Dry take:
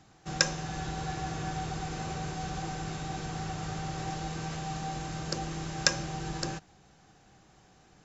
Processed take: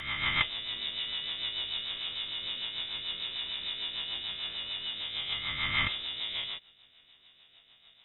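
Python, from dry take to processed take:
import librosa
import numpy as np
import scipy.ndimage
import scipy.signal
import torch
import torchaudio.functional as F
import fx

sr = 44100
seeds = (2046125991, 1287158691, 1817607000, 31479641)

y = fx.spec_swells(x, sr, rise_s=1.98)
y = fx.freq_invert(y, sr, carrier_hz=3700)
y = fx.rotary(y, sr, hz=6.7)
y = y * 10.0 ** (-1.5 / 20.0)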